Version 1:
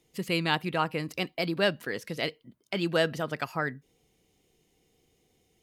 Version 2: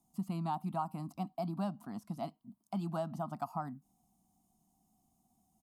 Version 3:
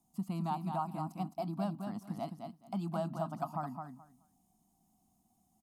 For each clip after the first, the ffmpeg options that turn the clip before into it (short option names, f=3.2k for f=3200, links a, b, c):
-filter_complex "[0:a]firequalizer=gain_entry='entry(140,0);entry(210,12);entry(470,-25);entry(700,10);entry(1200,3);entry(1700,-22);entry(5100,-5);entry(8400,6)':delay=0.05:min_phase=1,acrossover=split=2100|4200[a][b][c];[a]acompressor=threshold=-25dB:ratio=4[d];[b]acompressor=threshold=-50dB:ratio=4[e];[c]acompressor=threshold=-59dB:ratio=4[f];[d][e][f]amix=inputs=3:normalize=0,volume=-7.5dB"
-af "aecho=1:1:213|426|639:0.501|0.0852|0.0145"